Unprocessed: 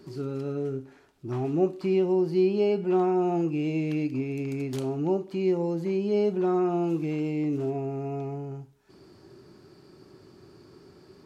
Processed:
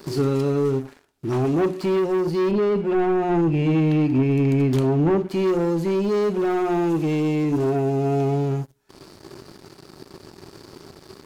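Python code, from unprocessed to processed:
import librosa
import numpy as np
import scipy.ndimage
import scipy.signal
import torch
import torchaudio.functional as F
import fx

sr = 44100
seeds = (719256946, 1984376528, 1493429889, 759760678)

y = fx.high_shelf(x, sr, hz=5700.0, db=7.0)
y = fx.hum_notches(y, sr, base_hz=60, count=6)
y = fx.leveller(y, sr, passes=3)
y = fx.rider(y, sr, range_db=10, speed_s=0.5)
y = fx.bass_treble(y, sr, bass_db=5, treble_db=-11, at=(2.51, 5.29))
y = y * librosa.db_to_amplitude(-1.5)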